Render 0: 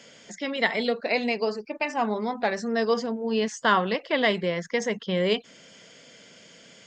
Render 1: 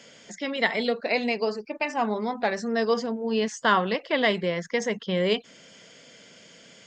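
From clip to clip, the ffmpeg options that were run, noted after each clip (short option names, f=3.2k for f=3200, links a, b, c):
-af anull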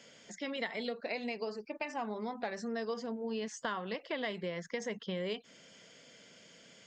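-af "acompressor=threshold=-27dB:ratio=5,volume=-7dB"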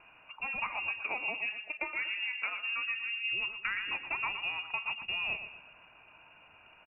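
-filter_complex "[0:a]asplit=2[a][b];[b]aecho=0:1:119|238|357|476:0.335|0.134|0.0536|0.0214[c];[a][c]amix=inputs=2:normalize=0,lowpass=f=2.6k:t=q:w=0.5098,lowpass=f=2.6k:t=q:w=0.6013,lowpass=f=2.6k:t=q:w=0.9,lowpass=f=2.6k:t=q:w=2.563,afreqshift=-3000,volume=2dB"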